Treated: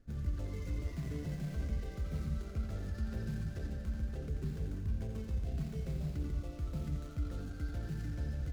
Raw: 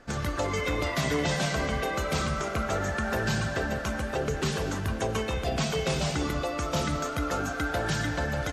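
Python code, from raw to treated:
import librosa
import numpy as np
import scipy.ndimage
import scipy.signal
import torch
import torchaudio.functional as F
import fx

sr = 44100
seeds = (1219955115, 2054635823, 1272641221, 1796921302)

y = scipy.ndimage.median_filter(x, 15, mode='constant')
y = fx.tone_stack(y, sr, knobs='10-0-1')
y = y + 10.0 ** (-6.5 / 20.0) * np.pad(y, (int(86 * sr / 1000.0), 0))[:len(y)]
y = y * librosa.db_to_amplitude(5.5)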